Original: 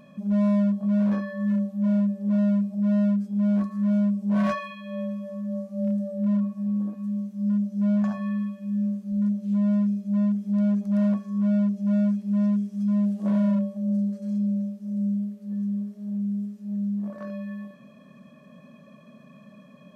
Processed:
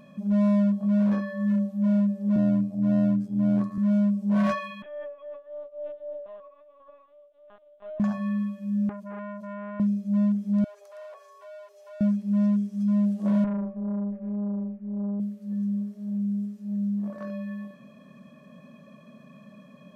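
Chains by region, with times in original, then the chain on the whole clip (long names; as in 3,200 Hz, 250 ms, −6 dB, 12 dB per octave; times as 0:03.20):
0:02.36–0:03.78: high-pass filter 270 Hz + low-shelf EQ 440 Hz +9.5 dB + amplitude modulation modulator 86 Hz, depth 35%
0:04.82–0:08.00: Butterworth high-pass 530 Hz 96 dB per octave + parametric band 2,100 Hz −9.5 dB 0.23 octaves + linear-prediction vocoder at 8 kHz pitch kept
0:08.89–0:09.80: downward compressor 4 to 1, threshold −30 dBFS + saturating transformer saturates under 920 Hz
0:10.64–0:12.01: Butterworth high-pass 420 Hz 72 dB per octave + downward compressor 2 to 1, threshold −46 dBFS
0:13.44–0:15.20: Butterworth low-pass 2,300 Hz + tube saturation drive 26 dB, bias 0.3
whole clip: no processing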